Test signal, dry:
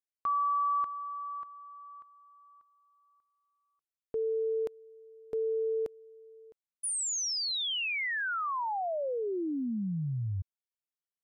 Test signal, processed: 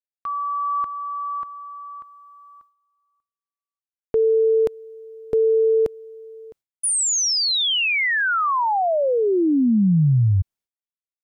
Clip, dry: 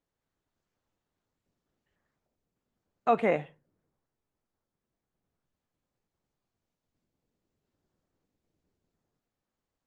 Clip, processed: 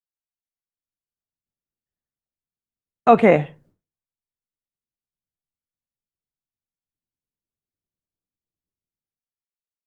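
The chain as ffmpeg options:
-af "agate=range=-33dB:threshold=-59dB:ratio=3:release=285:detection=peak,lowshelf=f=230:g=8,dynaudnorm=f=150:g=13:m=10dB,volume=2dB"

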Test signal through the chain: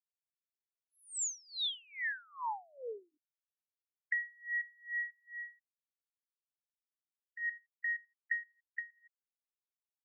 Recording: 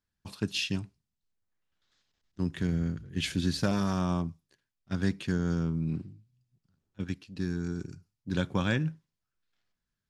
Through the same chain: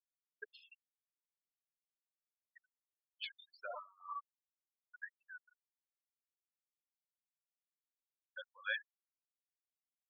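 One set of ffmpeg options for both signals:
-filter_complex "[0:a]highpass=880,asplit=2[a][b];[b]adelay=86,lowpass=f=4.3k:p=1,volume=-12dB,asplit=2[c][d];[d]adelay=86,lowpass=f=4.3k:p=1,volume=0.48,asplit=2[e][f];[f]adelay=86,lowpass=f=4.3k:p=1,volume=0.48,asplit=2[g][h];[h]adelay=86,lowpass=f=4.3k:p=1,volume=0.48,asplit=2[i][j];[j]adelay=86,lowpass=f=4.3k:p=1,volume=0.48[k];[c][e][g][i][k]amix=inputs=5:normalize=0[l];[a][l]amix=inputs=2:normalize=0,afftfilt=real='re*gte(hypot(re,im),0.0501)':imag='im*gte(hypot(re,im),0.0501)':win_size=1024:overlap=0.75,adynamicequalizer=threshold=0.00251:dfrequency=3500:dqfactor=4:tfrequency=3500:tqfactor=4:attack=5:release=100:ratio=0.375:range=2:mode=boostabove:tftype=bell,acompressor=threshold=-35dB:ratio=12,aresample=22050,aresample=44100,aeval=exprs='val(0)*pow(10,-30*(0.5-0.5*cos(2*PI*2.4*n/s))/20)':c=same,volume=3.5dB"

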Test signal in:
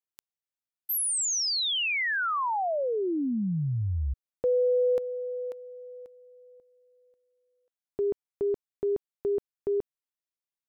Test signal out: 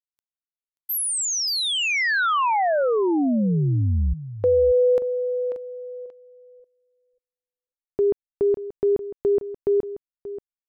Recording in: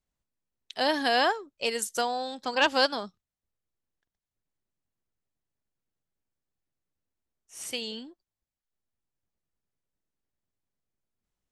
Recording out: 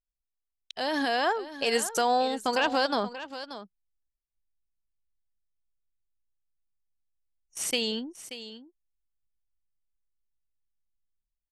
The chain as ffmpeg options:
-filter_complex "[0:a]anlmdn=0.158,alimiter=limit=-21.5dB:level=0:latency=1:release=51,dynaudnorm=f=740:g=3:m=7.5dB,asplit=2[a][b];[b]aecho=0:1:582:0.211[c];[a][c]amix=inputs=2:normalize=0,adynamicequalizer=threshold=0.01:dfrequency=2500:dqfactor=0.7:tfrequency=2500:tqfactor=0.7:attack=5:release=100:ratio=0.375:range=2.5:mode=cutabove:tftype=highshelf"

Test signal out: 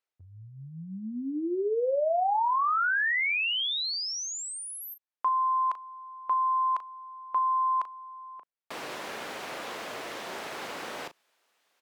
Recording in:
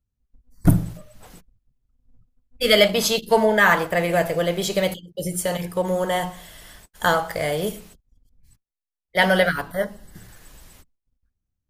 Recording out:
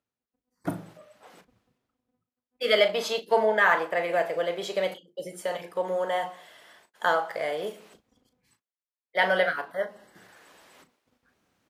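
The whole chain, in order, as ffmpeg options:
-filter_complex "[0:a]highpass=410,highshelf=f=5.6k:g=-7.5,areverse,acompressor=mode=upward:threshold=-42dB:ratio=2.5,areverse,aemphasis=mode=reproduction:type=cd,asplit=2[a][b];[b]adelay=37,volume=-11.5dB[c];[a][c]amix=inputs=2:normalize=0,volume=-4dB"

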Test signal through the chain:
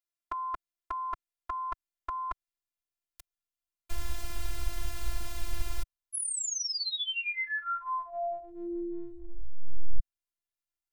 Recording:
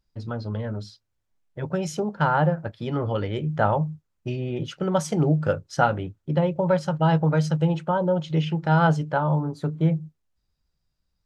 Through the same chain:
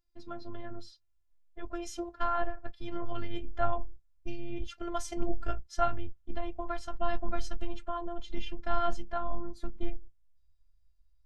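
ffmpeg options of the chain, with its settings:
-af "afftfilt=real='hypot(re,im)*cos(PI*b)':imag='0':win_size=512:overlap=0.75,asubboost=boost=9:cutoff=110,volume=-4.5dB"

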